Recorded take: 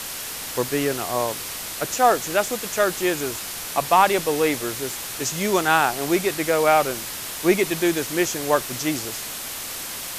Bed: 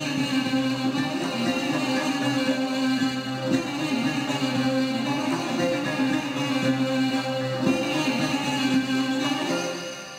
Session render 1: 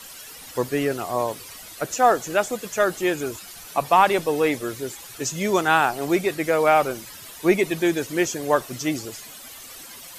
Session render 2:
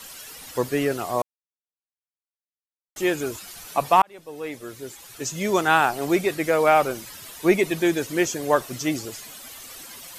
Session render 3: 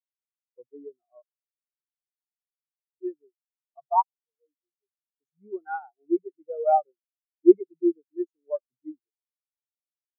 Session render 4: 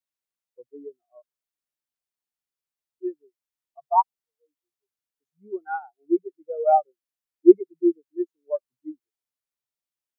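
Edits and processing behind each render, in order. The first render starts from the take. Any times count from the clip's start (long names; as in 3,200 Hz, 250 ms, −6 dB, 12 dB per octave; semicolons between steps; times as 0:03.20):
broadband denoise 13 dB, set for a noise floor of −32 dBFS
0:01.22–0:02.96: silence; 0:04.02–0:05.67: fade in
every bin expanded away from the loudest bin 4 to 1
level +2.5 dB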